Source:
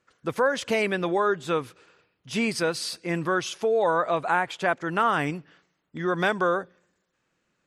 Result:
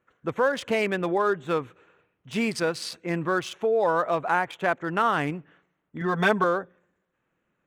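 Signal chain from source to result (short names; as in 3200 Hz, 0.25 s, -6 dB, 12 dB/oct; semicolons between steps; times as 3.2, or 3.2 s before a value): Wiener smoothing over 9 samples; 6.01–6.44 comb 4.5 ms, depth 96%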